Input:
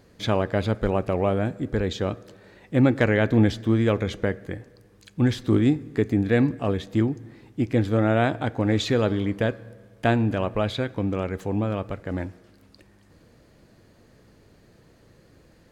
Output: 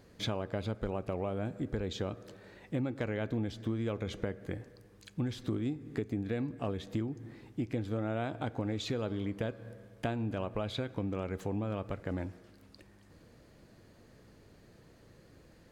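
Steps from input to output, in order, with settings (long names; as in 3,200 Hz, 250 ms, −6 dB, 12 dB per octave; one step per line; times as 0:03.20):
dynamic equaliser 1,800 Hz, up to −6 dB, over −47 dBFS, Q 4.9
downward compressor 6 to 1, threshold −28 dBFS, peak gain reduction 14 dB
level −3.5 dB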